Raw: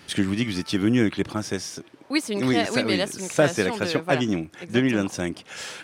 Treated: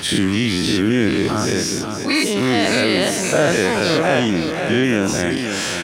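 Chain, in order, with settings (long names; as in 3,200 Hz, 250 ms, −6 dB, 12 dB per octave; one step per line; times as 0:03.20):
every bin's largest magnitude spread in time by 120 ms
single-tap delay 528 ms −12.5 dB
envelope flattener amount 50%
level −2 dB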